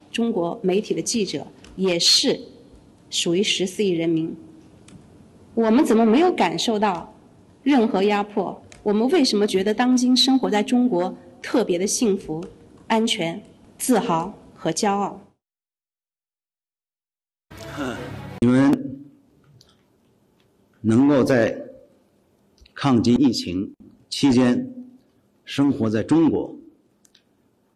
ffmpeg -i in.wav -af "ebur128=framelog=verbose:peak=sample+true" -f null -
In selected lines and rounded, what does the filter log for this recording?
Integrated loudness:
  I:         -20.5 LUFS
  Threshold: -32.0 LUFS
Loudness range:
  LRA:         6.2 LU
  Threshold: -42.2 LUFS
  LRA low:   -25.8 LUFS
  LRA high:  -19.6 LUFS
Sample peak:
  Peak:       -7.4 dBFS
True peak:
  Peak:       -7.0 dBFS